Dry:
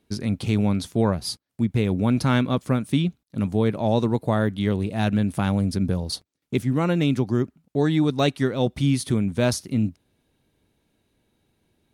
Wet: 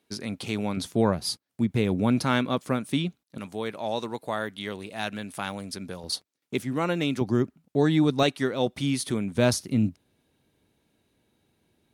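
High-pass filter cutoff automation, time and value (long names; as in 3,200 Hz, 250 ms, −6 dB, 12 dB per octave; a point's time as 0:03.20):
high-pass filter 6 dB per octave
500 Hz
from 0:00.77 160 Hz
from 0:02.21 330 Hz
from 0:03.38 1,100 Hz
from 0:06.04 430 Hz
from 0:07.21 120 Hz
from 0:08.23 350 Hz
from 0:09.35 82 Hz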